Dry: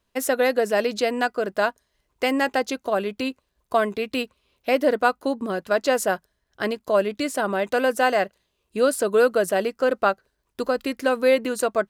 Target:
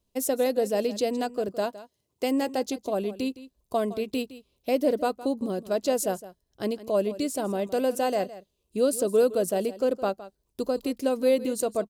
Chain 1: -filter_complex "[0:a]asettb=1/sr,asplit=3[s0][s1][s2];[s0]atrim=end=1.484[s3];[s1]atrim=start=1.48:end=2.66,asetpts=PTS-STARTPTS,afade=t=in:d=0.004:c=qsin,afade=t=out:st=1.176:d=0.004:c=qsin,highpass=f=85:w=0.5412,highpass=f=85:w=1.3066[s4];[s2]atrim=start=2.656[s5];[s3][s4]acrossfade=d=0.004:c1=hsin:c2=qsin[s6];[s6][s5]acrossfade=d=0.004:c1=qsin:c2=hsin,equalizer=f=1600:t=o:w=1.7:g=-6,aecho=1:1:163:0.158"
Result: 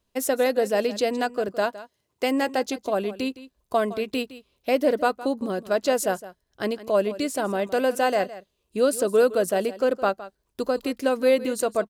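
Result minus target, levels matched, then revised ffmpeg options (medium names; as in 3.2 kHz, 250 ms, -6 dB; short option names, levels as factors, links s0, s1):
2 kHz band +6.5 dB
-filter_complex "[0:a]asettb=1/sr,asplit=3[s0][s1][s2];[s0]atrim=end=1.484[s3];[s1]atrim=start=1.48:end=2.66,asetpts=PTS-STARTPTS,afade=t=in:d=0.004:c=qsin,afade=t=out:st=1.176:d=0.004:c=qsin,highpass=f=85:w=0.5412,highpass=f=85:w=1.3066[s4];[s2]atrim=start=2.656[s5];[s3][s4]acrossfade=d=0.004:c1=hsin:c2=qsin[s6];[s6][s5]acrossfade=d=0.004:c1=qsin:c2=hsin,equalizer=f=1600:t=o:w=1.7:g=-17,aecho=1:1:163:0.158"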